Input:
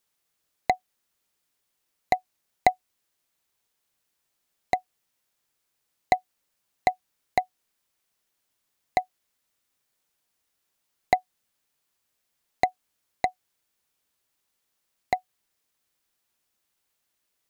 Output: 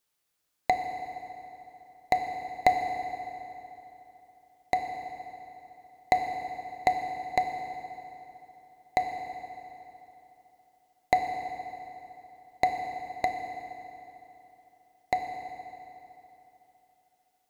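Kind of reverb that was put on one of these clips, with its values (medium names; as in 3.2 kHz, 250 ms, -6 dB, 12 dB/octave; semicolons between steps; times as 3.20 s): FDN reverb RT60 3.3 s, high-frequency decay 0.75×, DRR 4 dB; trim -2.5 dB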